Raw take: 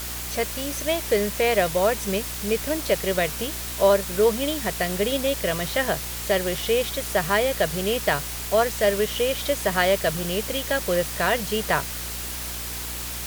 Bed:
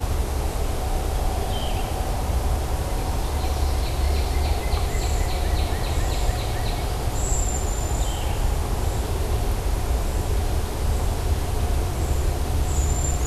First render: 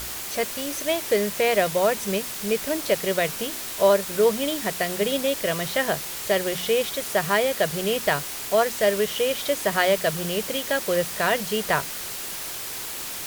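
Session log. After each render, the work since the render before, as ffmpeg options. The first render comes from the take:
-af "bandreject=f=60:t=h:w=4,bandreject=f=120:t=h:w=4,bandreject=f=180:t=h:w=4,bandreject=f=240:t=h:w=4,bandreject=f=300:t=h:w=4"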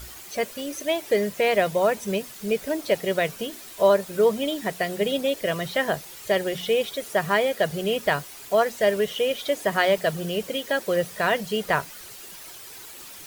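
-af "afftdn=nr=11:nf=-33"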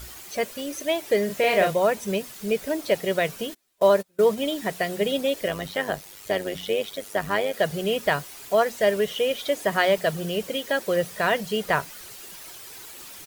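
-filter_complex "[0:a]asplit=3[a][b][c];[a]afade=t=out:st=1.28:d=0.02[d];[b]asplit=2[e][f];[f]adelay=37,volume=-4dB[g];[e][g]amix=inputs=2:normalize=0,afade=t=in:st=1.28:d=0.02,afade=t=out:st=1.73:d=0.02[h];[c]afade=t=in:st=1.73:d=0.02[i];[d][h][i]amix=inputs=3:normalize=0,asplit=3[j][k][l];[j]afade=t=out:st=3.53:d=0.02[m];[k]agate=range=-30dB:threshold=-29dB:ratio=16:release=100:detection=peak,afade=t=in:st=3.53:d=0.02,afade=t=out:st=4.36:d=0.02[n];[l]afade=t=in:st=4.36:d=0.02[o];[m][n][o]amix=inputs=3:normalize=0,asettb=1/sr,asplit=3[p][q][r];[p]atrim=end=5.484[s];[q]atrim=start=5.48:end=7.54,asetpts=PTS-STARTPTS,afade=t=in:d=0.004:c=qsin,afade=t=out:st=2.056:d=0.004:c=qsin,tremolo=f=100:d=0.667[t];[r]atrim=start=7.536[u];[s][t]acrossfade=d=0.004:c1=hsin:c2=qsin[v];[v][u]acrossfade=d=0.004:c1=qsin:c2=hsin"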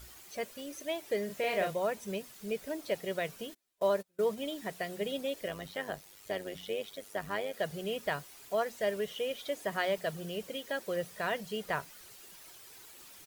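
-af "volume=-11dB"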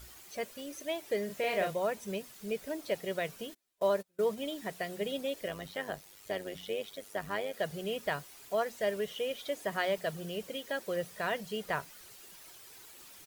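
-af anull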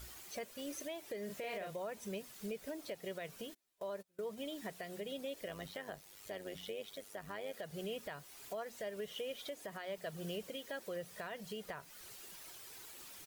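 -af "acompressor=threshold=-33dB:ratio=4,alimiter=level_in=9.5dB:limit=-24dB:level=0:latency=1:release=335,volume=-9.5dB"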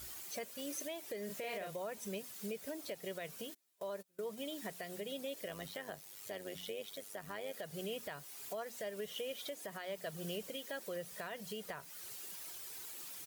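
-af "highpass=79,highshelf=f=5.5k:g=6.5"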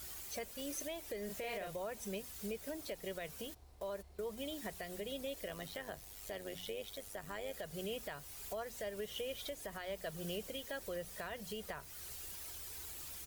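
-filter_complex "[1:a]volume=-38.5dB[a];[0:a][a]amix=inputs=2:normalize=0"

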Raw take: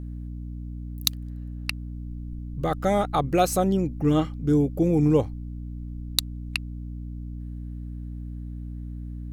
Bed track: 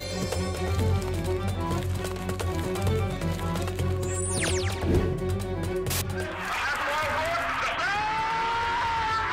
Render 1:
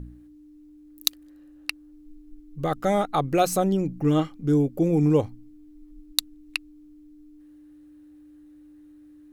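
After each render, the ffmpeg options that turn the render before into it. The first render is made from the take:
-af "bandreject=f=60:t=h:w=4,bandreject=f=120:t=h:w=4,bandreject=f=180:t=h:w=4,bandreject=f=240:t=h:w=4"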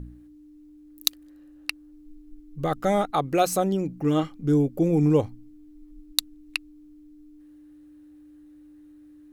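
-filter_complex "[0:a]asettb=1/sr,asplit=3[a][b][c];[a]atrim=end=3.104[d];[b]atrim=start=3.1:end=4.23,asetpts=PTS-STARTPTS,afade=t=in:d=0.004:c=qsin,afade=t=out:st=1.126:d=0.004:c=qsin,lowshelf=f=100:g=-11[e];[c]atrim=start=4.226[f];[d][e]acrossfade=d=0.004:c1=hsin:c2=qsin[g];[g][f]acrossfade=d=0.004:c1=qsin:c2=hsin"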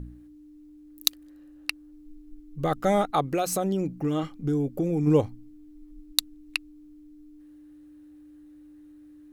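-filter_complex "[0:a]asplit=3[a][b][c];[a]afade=t=out:st=3.3:d=0.02[d];[b]acompressor=threshold=-22dB:ratio=4:attack=3.2:release=140:knee=1:detection=peak,afade=t=in:st=3.3:d=0.02,afade=t=out:st=5.06:d=0.02[e];[c]afade=t=in:st=5.06:d=0.02[f];[d][e][f]amix=inputs=3:normalize=0"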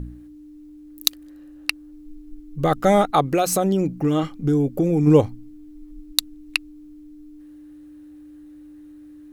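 -af "volume=6.5dB,alimiter=limit=-1dB:level=0:latency=1"

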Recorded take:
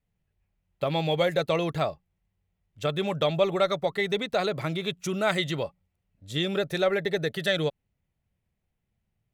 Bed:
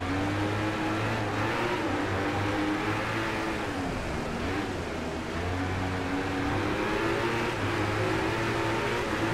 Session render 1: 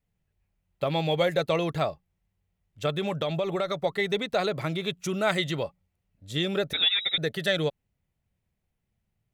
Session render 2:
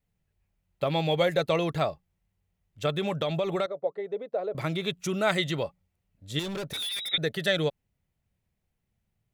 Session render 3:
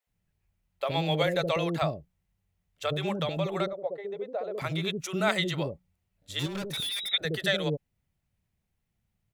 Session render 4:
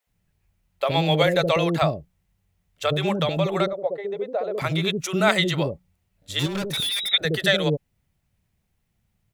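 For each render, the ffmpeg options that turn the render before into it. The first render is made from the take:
-filter_complex "[0:a]asettb=1/sr,asplit=3[a][b][c];[a]atrim=end=2.914[d];[b]atrim=start=2.91:end=3.78,asetpts=PTS-STARTPTS,afade=t=in:d=0.004:c=qsin,afade=t=out:st=0.866:d=0.004:c=qsin,acompressor=threshold=-23dB:ratio=6:attack=3.2:release=140:knee=1:detection=peak[e];[c]atrim=start=3.776[f];[d][e]acrossfade=d=0.004:c1=hsin:c2=qsin[g];[g][f]acrossfade=d=0.004:c1=qsin:c2=hsin,asettb=1/sr,asplit=3[h][i][j];[h]atrim=end=6.734[k];[i]atrim=start=6.73:end=7.18,asetpts=PTS-STARTPTS,afade=t=in:d=0.004:c=qsin,afade=t=out:st=0.446:d=0.004:c=qsin,lowpass=f=3.4k:t=q:w=0.5098,lowpass=f=3.4k:t=q:w=0.6013,lowpass=f=3.4k:t=q:w=0.9,lowpass=f=3.4k:t=q:w=2.563,afreqshift=-4000[l];[j]atrim=start=7.176[m];[k][l]acrossfade=d=0.004:c1=hsin:c2=qsin[n];[n][m]acrossfade=d=0.004:c1=qsin:c2=hsin"
-filter_complex "[0:a]asettb=1/sr,asplit=3[a][b][c];[a]atrim=end=3.664[d];[b]atrim=start=3.66:end=4.55,asetpts=PTS-STARTPTS,afade=t=in:d=0.004:c=qsin,afade=t=out:st=0.886:d=0.004:c=qsin,bandpass=f=510:t=q:w=2.7[e];[c]atrim=start=4.546[f];[d][e]acrossfade=d=0.004:c1=hsin:c2=qsin[g];[g][f]acrossfade=d=0.004:c1=qsin:c2=hsin,asettb=1/sr,asplit=3[h][i][j];[h]atrim=end=6.394[k];[i]atrim=start=6.39:end=7.12,asetpts=PTS-STARTPTS,afade=t=in:d=0.004:c=qsin,afade=t=out:st=0.726:d=0.004:c=qsin,volume=31.5dB,asoftclip=hard,volume=-31.5dB[l];[j]atrim=start=7.116[m];[k][l]acrossfade=d=0.004:c1=hsin:c2=qsin[n];[n][m]acrossfade=d=0.004:c1=qsin:c2=hsin"
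-filter_complex "[0:a]acrossover=split=470[a][b];[a]adelay=70[c];[c][b]amix=inputs=2:normalize=0"
-af "volume=7dB"

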